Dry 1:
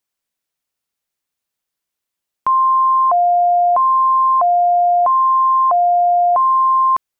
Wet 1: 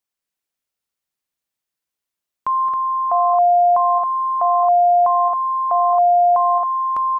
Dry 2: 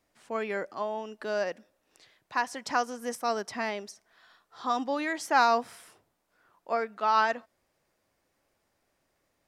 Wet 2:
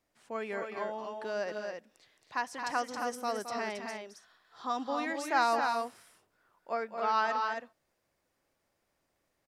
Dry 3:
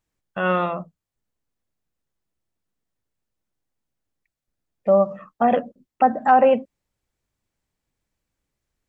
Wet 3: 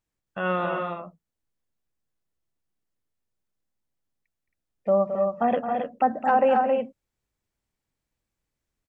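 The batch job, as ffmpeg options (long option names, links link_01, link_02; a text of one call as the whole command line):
ffmpeg -i in.wav -af "aecho=1:1:218.7|271.1:0.355|0.562,volume=-5dB" out.wav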